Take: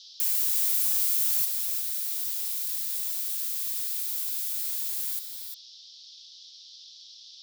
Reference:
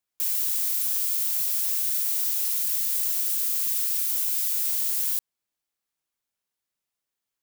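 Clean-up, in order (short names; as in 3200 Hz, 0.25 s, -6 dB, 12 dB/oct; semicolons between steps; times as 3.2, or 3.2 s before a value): noise print and reduce 30 dB; inverse comb 0.351 s -7.5 dB; gain correction +6 dB, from 1.45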